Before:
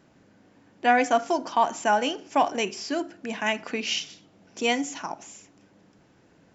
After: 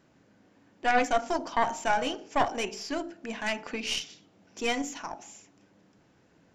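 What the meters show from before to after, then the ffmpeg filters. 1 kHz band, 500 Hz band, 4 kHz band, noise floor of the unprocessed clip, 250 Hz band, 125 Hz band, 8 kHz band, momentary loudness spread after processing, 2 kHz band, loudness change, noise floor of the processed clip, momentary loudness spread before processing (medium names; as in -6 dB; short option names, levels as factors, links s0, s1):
-4.5 dB, -4.5 dB, -4.0 dB, -60 dBFS, -5.0 dB, -1.0 dB, no reading, 13 LU, -3.5 dB, -4.0 dB, -64 dBFS, 13 LU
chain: -af "bandreject=f=48.39:t=h:w=4,bandreject=f=96.78:t=h:w=4,bandreject=f=145.17:t=h:w=4,bandreject=f=193.56:t=h:w=4,bandreject=f=241.95:t=h:w=4,bandreject=f=290.34:t=h:w=4,bandreject=f=338.73:t=h:w=4,bandreject=f=387.12:t=h:w=4,bandreject=f=435.51:t=h:w=4,bandreject=f=483.9:t=h:w=4,bandreject=f=532.29:t=h:w=4,bandreject=f=580.68:t=h:w=4,bandreject=f=629.07:t=h:w=4,bandreject=f=677.46:t=h:w=4,bandreject=f=725.85:t=h:w=4,bandreject=f=774.24:t=h:w=4,bandreject=f=822.63:t=h:w=4,bandreject=f=871.02:t=h:w=4,bandreject=f=919.41:t=h:w=4,aeval=exprs='0.422*(cos(1*acos(clip(val(0)/0.422,-1,1)))-cos(1*PI/2))+0.0841*(cos(4*acos(clip(val(0)/0.422,-1,1)))-cos(4*PI/2))':c=same,volume=0.668"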